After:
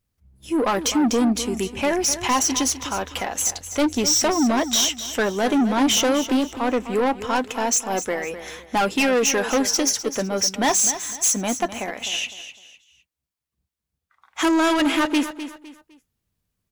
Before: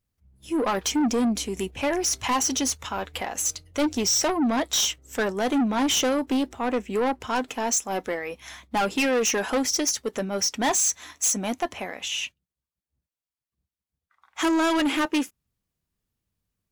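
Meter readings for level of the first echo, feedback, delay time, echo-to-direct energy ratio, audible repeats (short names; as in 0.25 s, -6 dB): -12.0 dB, 31%, 0.254 s, -11.5 dB, 3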